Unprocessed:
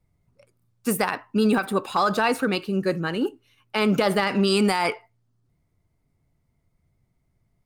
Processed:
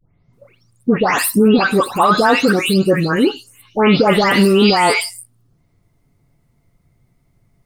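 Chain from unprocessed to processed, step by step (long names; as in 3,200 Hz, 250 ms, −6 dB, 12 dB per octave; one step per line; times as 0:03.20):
every frequency bin delayed by itself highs late, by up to 328 ms
in parallel at +1.5 dB: brickwall limiter −16.5 dBFS, peak gain reduction 6.5 dB
on the sum: level +4.5 dB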